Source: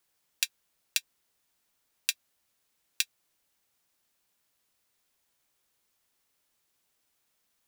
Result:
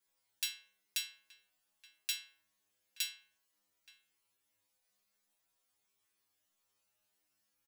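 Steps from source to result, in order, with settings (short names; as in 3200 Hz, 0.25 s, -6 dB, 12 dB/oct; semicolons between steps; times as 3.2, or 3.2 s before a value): metallic resonator 100 Hz, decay 0.8 s, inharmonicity 0.002; outdoor echo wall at 150 m, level -15 dB; gain +8 dB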